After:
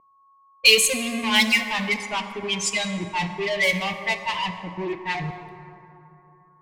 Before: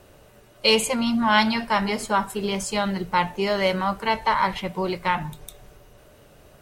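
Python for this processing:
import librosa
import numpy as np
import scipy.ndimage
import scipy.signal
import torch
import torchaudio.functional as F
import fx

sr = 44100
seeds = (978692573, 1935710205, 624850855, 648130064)

p1 = fx.bin_expand(x, sr, power=3.0)
p2 = scipy.signal.sosfilt(scipy.signal.butter(2, 130.0, 'highpass', fs=sr, output='sos'), p1)
p3 = fx.fuzz(p2, sr, gain_db=44.0, gate_db=-49.0)
p4 = p2 + F.gain(torch.from_numpy(p3), -11.0).numpy()
p5 = p4 + 10.0 ** (-38.0 / 20.0) * np.sin(2.0 * np.pi * 1100.0 * np.arange(len(p4)) / sr)
p6 = fx.high_shelf_res(p5, sr, hz=1800.0, db=7.5, q=3.0)
p7 = fx.env_lowpass(p6, sr, base_hz=560.0, full_db=-12.0)
p8 = fx.rev_plate(p7, sr, seeds[0], rt60_s=3.1, hf_ratio=0.4, predelay_ms=0, drr_db=7.0)
y = F.gain(torch.from_numpy(p8), -5.0).numpy()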